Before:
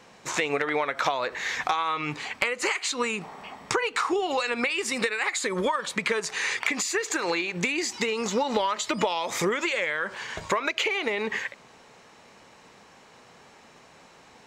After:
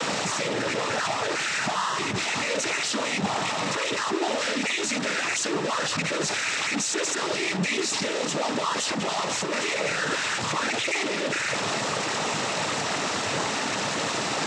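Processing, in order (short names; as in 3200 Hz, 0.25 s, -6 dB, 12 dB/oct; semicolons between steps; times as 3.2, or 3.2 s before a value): infinite clipping; noise vocoder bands 12; gain +3 dB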